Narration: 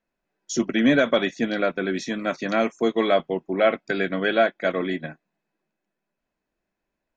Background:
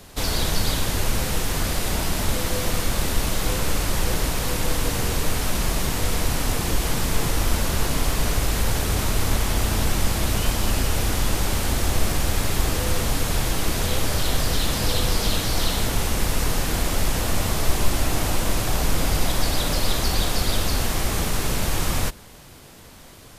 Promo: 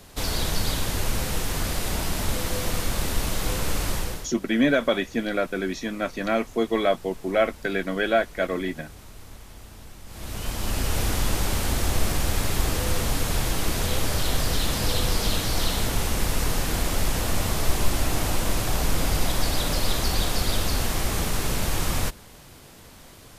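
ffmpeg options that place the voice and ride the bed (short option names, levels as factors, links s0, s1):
-filter_complex "[0:a]adelay=3750,volume=0.794[s0];[1:a]volume=7.5,afade=t=out:st=3.9:d=0.4:silence=0.105925,afade=t=in:st=10.06:d=0.94:silence=0.0944061[s1];[s0][s1]amix=inputs=2:normalize=0"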